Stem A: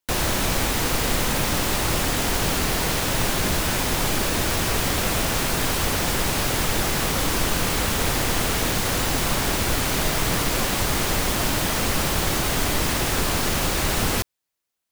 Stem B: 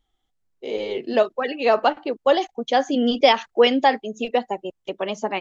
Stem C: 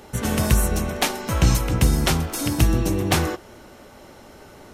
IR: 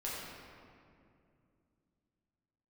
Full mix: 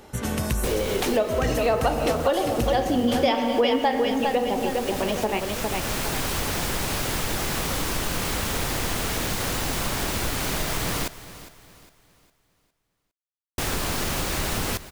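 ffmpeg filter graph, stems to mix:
-filter_complex "[0:a]adelay=550,volume=-2dB,asplit=3[link_01][link_02][link_03];[link_01]atrim=end=11.08,asetpts=PTS-STARTPTS,afade=type=out:start_time=11.076:duration=0.004:curve=hsin[link_04];[link_02]atrim=start=11.08:end=13.58,asetpts=PTS-STARTPTS,volume=0[link_05];[link_03]atrim=start=13.58,asetpts=PTS-STARTPTS,afade=type=in:duration=0.004:curve=hsin[link_06];[link_04][link_05][link_06]concat=n=3:v=0:a=1,asplit=2[link_07][link_08];[link_08]volume=-18dB[link_09];[1:a]lowshelf=frequency=240:gain=6,volume=1dB,asplit=4[link_10][link_11][link_12][link_13];[link_11]volume=-5.5dB[link_14];[link_12]volume=-4dB[link_15];[2:a]asoftclip=type=hard:threshold=-10dB,volume=-3dB[link_16];[link_13]apad=whole_len=681929[link_17];[link_07][link_17]sidechaincompress=threshold=-22dB:ratio=8:attack=16:release=1340[link_18];[3:a]atrim=start_sample=2205[link_19];[link_14][link_19]afir=irnorm=-1:irlink=0[link_20];[link_09][link_15]amix=inputs=2:normalize=0,aecho=0:1:407|814|1221|1628|2035:1|0.37|0.137|0.0507|0.0187[link_21];[link_18][link_10][link_16][link_20][link_21]amix=inputs=5:normalize=0,acompressor=threshold=-23dB:ratio=2.5"

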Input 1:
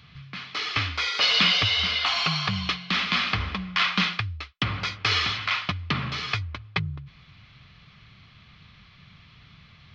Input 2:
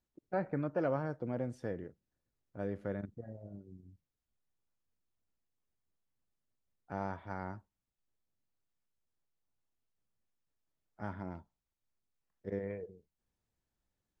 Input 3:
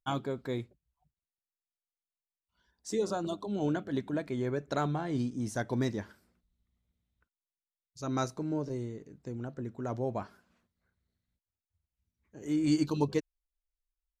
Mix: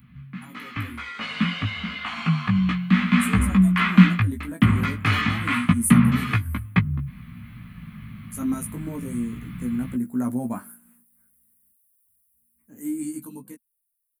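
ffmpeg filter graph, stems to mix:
ffmpeg -i stem1.wav -i stem2.wav -i stem3.wav -filter_complex "[0:a]volume=2.5dB[link_01];[2:a]adelay=350,volume=-2.5dB,bass=frequency=250:gain=-11,treble=frequency=4000:gain=10,alimiter=level_in=3dB:limit=-24dB:level=0:latency=1:release=194,volume=-3dB,volume=0dB[link_02];[link_01][link_02]amix=inputs=2:normalize=0,firequalizer=gain_entry='entry(120,0);entry(230,13);entry(360,-10);entry(680,-11);entry(1000,-6);entry(1900,-5);entry(3600,-18);entry(5300,-25);entry(9500,15)':delay=0.05:min_phase=1,flanger=delay=16:depth=2.5:speed=0.3,dynaudnorm=framelen=260:gausssize=21:maxgain=16.5dB" out.wav

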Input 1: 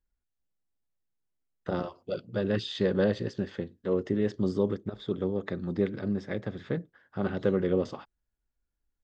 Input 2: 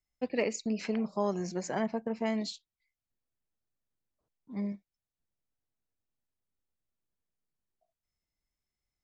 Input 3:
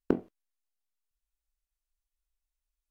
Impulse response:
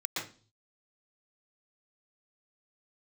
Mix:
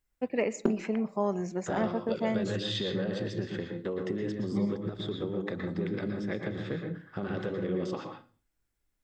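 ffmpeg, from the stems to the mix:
-filter_complex "[0:a]alimiter=limit=-22dB:level=0:latency=1:release=15,acompressor=threshold=-34dB:ratio=4,volume=2dB,asplit=2[link_01][link_02];[link_02]volume=-5dB[link_03];[1:a]equalizer=frequency=4600:width_type=o:width=0.86:gain=-13.5,volume=1.5dB,asplit=2[link_04][link_05];[link_05]volume=-24dB[link_06];[2:a]aecho=1:1:5.1:0.84,adelay=550,volume=-3.5dB,asplit=2[link_07][link_08];[link_08]volume=-20dB[link_09];[3:a]atrim=start_sample=2205[link_10];[link_03][link_06][link_09]amix=inputs=3:normalize=0[link_11];[link_11][link_10]afir=irnorm=-1:irlink=0[link_12];[link_01][link_04][link_07][link_12]amix=inputs=4:normalize=0"

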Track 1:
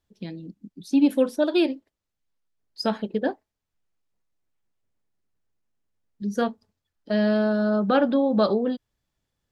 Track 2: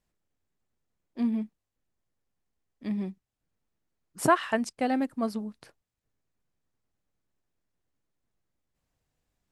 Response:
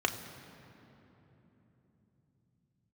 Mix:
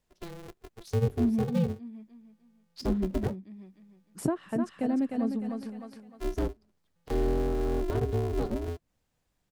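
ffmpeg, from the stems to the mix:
-filter_complex "[0:a]bandreject=frequency=510:width=12,dynaudnorm=framelen=210:gausssize=17:maxgain=5dB,aeval=exprs='val(0)*sgn(sin(2*PI*170*n/s))':channel_layout=same,volume=-6dB[link_01];[1:a]volume=1.5dB,asplit=2[link_02][link_03];[link_03]volume=-7dB,aecho=0:1:303|606|909|1212:1|0.31|0.0961|0.0298[link_04];[link_01][link_02][link_04]amix=inputs=3:normalize=0,acrossover=split=450[link_05][link_06];[link_06]acompressor=threshold=-43dB:ratio=6[link_07];[link_05][link_07]amix=inputs=2:normalize=0"

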